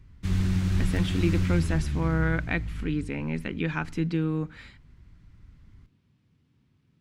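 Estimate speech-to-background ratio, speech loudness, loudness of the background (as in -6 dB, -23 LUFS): -0.5 dB, -29.5 LUFS, -29.0 LUFS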